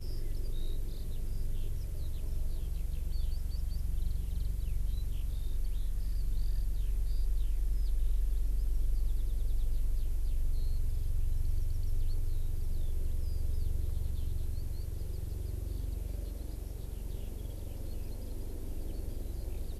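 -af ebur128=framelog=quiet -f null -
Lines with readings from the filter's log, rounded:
Integrated loudness:
  I:         -38.7 LUFS
  Threshold: -48.7 LUFS
Loudness range:
  LRA:         5.2 LU
  Threshold: -58.4 LUFS
  LRA low:   -41.6 LUFS
  LRA high:  -36.4 LUFS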